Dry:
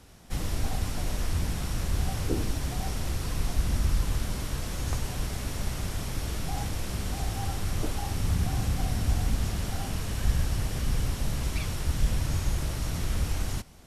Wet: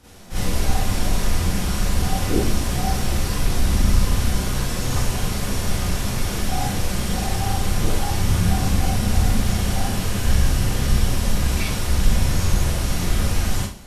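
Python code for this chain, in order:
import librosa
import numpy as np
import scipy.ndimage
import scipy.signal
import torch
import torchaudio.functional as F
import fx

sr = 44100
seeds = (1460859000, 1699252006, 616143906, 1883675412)

y = fx.rev_schroeder(x, sr, rt60_s=0.41, comb_ms=31, drr_db=-9.5)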